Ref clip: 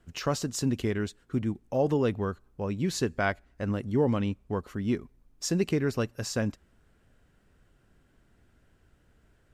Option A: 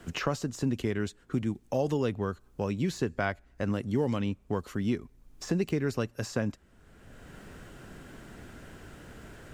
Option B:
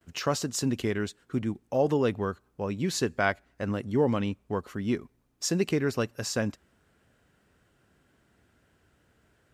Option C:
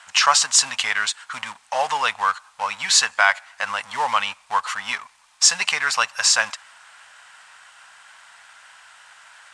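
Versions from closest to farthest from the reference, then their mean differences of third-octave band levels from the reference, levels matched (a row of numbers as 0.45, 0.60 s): B, A, C; 1.5, 2.5, 16.0 dB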